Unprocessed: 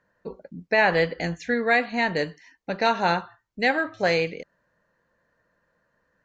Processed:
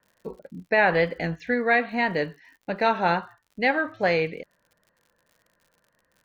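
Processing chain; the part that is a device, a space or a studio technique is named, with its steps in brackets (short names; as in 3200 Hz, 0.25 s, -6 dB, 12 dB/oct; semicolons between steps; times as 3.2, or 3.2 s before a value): lo-fi chain (LPF 3300 Hz 12 dB/oct; wow and flutter; crackle 79/s -47 dBFS)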